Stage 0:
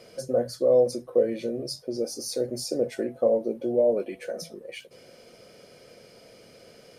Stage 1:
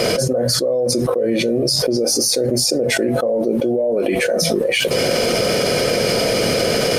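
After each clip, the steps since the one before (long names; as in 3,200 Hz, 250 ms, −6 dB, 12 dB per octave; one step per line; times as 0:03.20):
envelope flattener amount 100%
level −1 dB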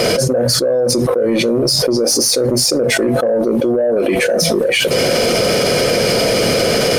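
soft clipping −10.5 dBFS, distortion −20 dB
level +4.5 dB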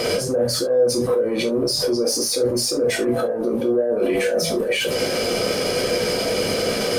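brickwall limiter −18 dBFS, peak gain reduction 11.5 dB
convolution reverb, pre-delay 3 ms, DRR 1 dB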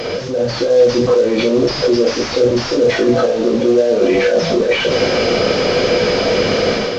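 linear delta modulator 32 kbit/s, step −30 dBFS
automatic gain control gain up to 9 dB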